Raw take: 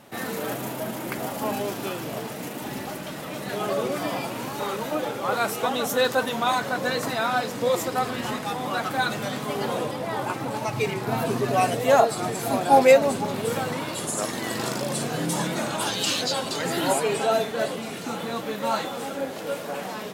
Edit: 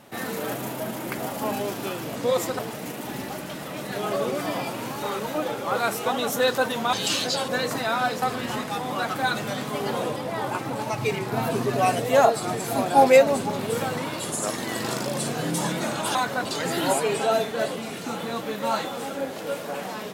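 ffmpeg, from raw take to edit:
-filter_complex "[0:a]asplit=8[s0][s1][s2][s3][s4][s5][s6][s7];[s0]atrim=end=2.162[s8];[s1]atrim=start=7.538:end=7.972[s9];[s2]atrim=start=2.158:end=6.502[s10];[s3]atrim=start=15.898:end=16.452[s11];[s4]atrim=start=6.798:end=7.542[s12];[s5]atrim=start=7.968:end=15.902[s13];[s6]atrim=start=6.498:end=6.802[s14];[s7]atrim=start=16.448[s15];[s8][s9]acrossfade=d=0.004:c1=hsin:c2=hsin[s16];[s16][s10]acrossfade=d=0.004:c1=hsin:c2=hsin[s17];[s17][s11]acrossfade=d=0.004:c1=hsin:c2=hsin[s18];[s18][s12]acrossfade=d=0.004:c1=hsin:c2=hsin[s19];[s19][s13]acrossfade=d=0.004:c1=hsin:c2=hsin[s20];[s20][s14]acrossfade=d=0.004:c1=hsin:c2=hsin[s21];[s21][s15]acrossfade=d=0.004:c1=hsin:c2=hsin"

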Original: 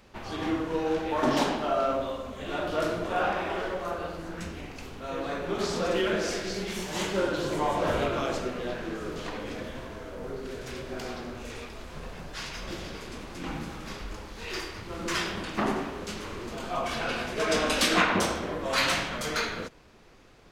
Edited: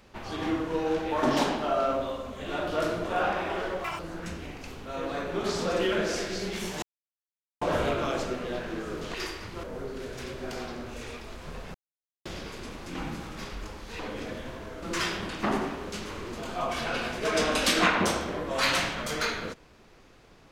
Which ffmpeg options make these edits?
-filter_complex "[0:a]asplit=11[s0][s1][s2][s3][s4][s5][s6][s7][s8][s9][s10];[s0]atrim=end=3.844[s11];[s1]atrim=start=3.84:end=4.14,asetpts=PTS-STARTPTS,asetrate=85995,aresample=44100[s12];[s2]atrim=start=4.136:end=6.97,asetpts=PTS-STARTPTS,afade=t=out:st=2.83:d=0.004:c=hsin[s13];[s3]atrim=start=6.97:end=7.76,asetpts=PTS-STARTPTS,volume=0[s14];[s4]atrim=start=7.76:end=9.292,asetpts=PTS-STARTPTS,afade=t=in:d=0.004:c=hsin[s15];[s5]atrim=start=14.478:end=14.972[s16];[s6]atrim=start=10.118:end=12.23,asetpts=PTS-STARTPTS,afade=t=out:st=2.108:d=0.004:c=hsin[s17];[s7]atrim=start=12.23:end=12.74,asetpts=PTS-STARTPTS,volume=0[s18];[s8]atrim=start=12.74:end=14.482,asetpts=PTS-STARTPTS,afade=t=in:d=0.004:c=hsin[s19];[s9]atrim=start=9.288:end=10.122[s20];[s10]atrim=start=14.968[s21];[s11][s12]acrossfade=d=0.004:c1=hsin:c2=hsin[s22];[s13][s14][s15]concat=n=3:v=0:a=1[s23];[s22][s23]acrossfade=d=0.004:c1=hsin:c2=hsin[s24];[s24][s16]acrossfade=d=0.004:c1=hsin:c2=hsin[s25];[s17][s18][s19]concat=n=3:v=0:a=1[s26];[s25][s26]acrossfade=d=0.004:c1=hsin:c2=hsin[s27];[s27][s20]acrossfade=d=0.004:c1=hsin:c2=hsin[s28];[s28][s21]acrossfade=d=0.004:c1=hsin:c2=hsin"

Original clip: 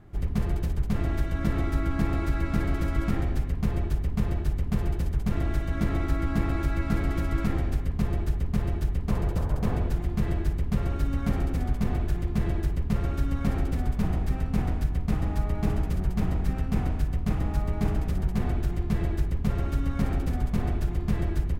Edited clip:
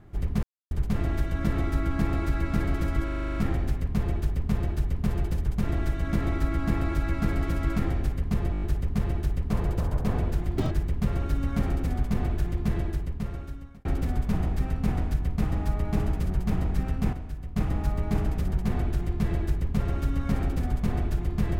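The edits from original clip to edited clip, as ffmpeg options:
-filter_complex "[0:a]asplit=21[s0][s1][s2][s3][s4][s5][s6][s7][s8][s9][s10][s11][s12][s13][s14][s15][s16][s17][s18][s19][s20];[s0]atrim=end=0.43,asetpts=PTS-STARTPTS,afade=t=out:st=0.426:d=0.004:c=hsin[s21];[s1]atrim=start=0.43:end=0.71,asetpts=PTS-STARTPTS,volume=0[s22];[s2]atrim=start=0.71:end=3.082,asetpts=PTS-STARTPTS,afade=t=in:d=0.004:c=hsin[s23];[s3]atrim=start=3.038:end=3.082[s24];[s4]atrim=start=3.038:end=3.082[s25];[s5]atrim=start=3.038:end=3.082[s26];[s6]atrim=start=3.038:end=3.082[s27];[s7]atrim=start=3.038:end=3.082[s28];[s8]atrim=start=3.038:end=3.082[s29];[s9]atrim=start=3.038:end=3.082[s30];[s10]atrim=start=3.038:end=8.222[s31];[s11]atrim=start=8.198:end=8.222[s32];[s12]atrim=start=8.198:end=8.222[s33];[s13]atrim=start=8.198:end=8.222[s34];[s14]atrim=start=8.198:end=8.222[s35];[s15]atrim=start=8.198:end=10.154[s36];[s16]atrim=start=10.15:end=10.41,asetpts=PTS-STARTPTS,asetrate=82026,aresample=44100[s37];[s17]atrim=start=10.406:end=13.55,asetpts=PTS-STARTPTS,afade=t=out:st=1.954:d=1.19[s38];[s18]atrim=start=13.55:end=16.832,asetpts=PTS-STARTPTS,afade=t=in:d=0.004:c=hsin[s39];[s19]atrim=start=16.828:end=17.262,asetpts=PTS-STARTPTS,volume=0.355[s40];[s20]atrim=start=17.258[s41];[s21][s22][s23]concat=n=3:v=0:a=1[s42];[s42][s24]acrossfade=d=0.004:c1=hsin:c2=hsin[s43];[s43][s25]acrossfade=d=0.004:c1=hsin:c2=hsin[s44];[s44][s26]acrossfade=d=0.004:c1=hsin:c2=hsin[s45];[s45][s27]acrossfade=d=0.004:c1=hsin:c2=hsin[s46];[s46][s28]acrossfade=d=0.004:c1=hsin:c2=hsin[s47];[s47][s29]acrossfade=d=0.004:c1=hsin:c2=hsin[s48];[s48][s30]acrossfade=d=0.004:c1=hsin:c2=hsin[s49];[s49][s31]acrossfade=d=0.004:c1=hsin:c2=hsin[s50];[s50][s32]acrossfade=d=0.004:c1=hsin:c2=hsin[s51];[s51][s33]acrossfade=d=0.004:c1=hsin:c2=hsin[s52];[s52][s34]acrossfade=d=0.004:c1=hsin:c2=hsin[s53];[s53][s35]acrossfade=d=0.004:c1=hsin:c2=hsin[s54];[s54][s36]acrossfade=d=0.004:c1=hsin:c2=hsin[s55];[s55][s37]acrossfade=d=0.004:c1=hsin:c2=hsin[s56];[s38][s39]concat=n=2:v=0:a=1[s57];[s56][s57]acrossfade=d=0.004:c1=hsin:c2=hsin[s58];[s58][s40]acrossfade=d=0.004:c1=hsin:c2=hsin[s59];[s59][s41]acrossfade=d=0.004:c1=hsin:c2=hsin"

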